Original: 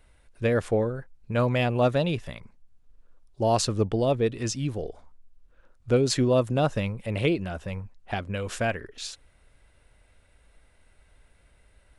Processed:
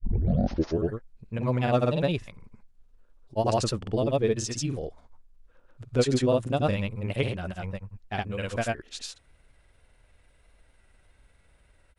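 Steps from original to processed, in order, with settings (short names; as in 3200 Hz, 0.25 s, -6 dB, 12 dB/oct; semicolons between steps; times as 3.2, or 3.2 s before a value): tape start at the beginning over 0.98 s; vibrato 6.3 Hz 38 cents; grains 0.1 s, pitch spread up and down by 0 st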